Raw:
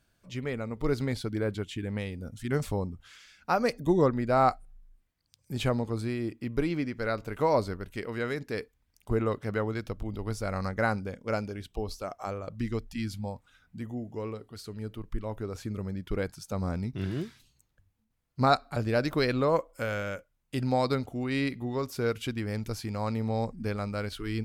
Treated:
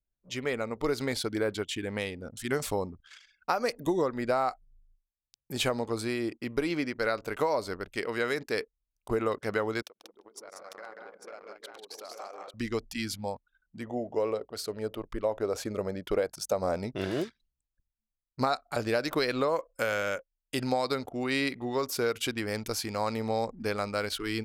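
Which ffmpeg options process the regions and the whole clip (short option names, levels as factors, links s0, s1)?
-filter_complex "[0:a]asettb=1/sr,asplit=3[s0][s1][s2];[s0]atrim=end=9.824[s3];[s1]atrim=start=9.82:end=12.54,asetpts=PTS-STARTPTS,afade=t=in:d=0.004:c=qsin,afade=t=out:st=2.716:d=0.004:c=qsin,acompressor=threshold=0.00708:ratio=16:attack=3.2:release=140:knee=1:detection=peak,highpass=440,aecho=1:1:141|188|344|849:0.501|0.668|0.316|0.668,atrim=end_sample=119952[s4];[s2]atrim=start=12.536[s5];[s3][s4]acrossfade=d=0.004:c1=hsin:c2=qsin[s6];[s6][s5]acrossfade=d=0.004:c1=qsin:c2=hsin,asettb=1/sr,asplit=3[s7][s8][s9];[s7]atrim=end=13.874[s10];[s8]atrim=start=13.87:end=17.24,asetpts=PTS-STARTPTS,afade=t=in:d=0.004:c=qsin,afade=t=out:st=3.366:d=0.004:c=qsin,equalizer=f=590:t=o:w=0.91:g=10.5,aeval=exprs='val(0)+0.000631*(sin(2*PI*60*n/s)+sin(2*PI*2*60*n/s)/2+sin(2*PI*3*60*n/s)/3+sin(2*PI*4*60*n/s)/4+sin(2*PI*5*60*n/s)/5)':c=same[s11];[s9]atrim=start=17.236[s12];[s10][s11]acrossfade=d=0.004:c1=hsin:c2=qsin[s13];[s13][s12]acrossfade=d=0.004:c1=qsin:c2=hsin,anlmdn=0.00398,bass=f=250:g=-13,treble=f=4000:g=4,acompressor=threshold=0.0355:ratio=12,volume=1.88"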